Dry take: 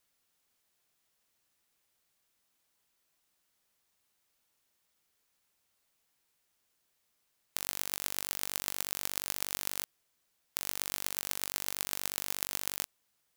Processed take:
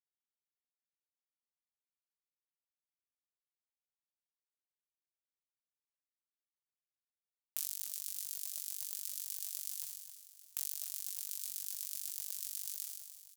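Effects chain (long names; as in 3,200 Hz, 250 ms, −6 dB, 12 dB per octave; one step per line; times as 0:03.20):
Chebyshev high-pass filter 2,200 Hz, order 8
parametric band 3,800 Hz −4 dB 0.42 octaves
comb filter 5.1 ms, depth 65%
downward compressor 10 to 1, threshold −39 dBFS, peak gain reduction 12.5 dB
dead-zone distortion −45 dBFS
flanger 0.44 Hz, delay 7.6 ms, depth 9.7 ms, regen −74%
on a send: repeating echo 298 ms, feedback 51%, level −11 dB
on the sum: level that may fall only so fast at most 42 dB per second
level +8.5 dB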